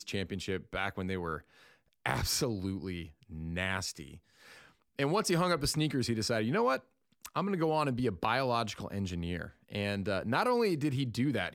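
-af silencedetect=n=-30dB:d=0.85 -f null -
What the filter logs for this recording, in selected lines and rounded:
silence_start: 3.91
silence_end: 4.99 | silence_duration: 1.09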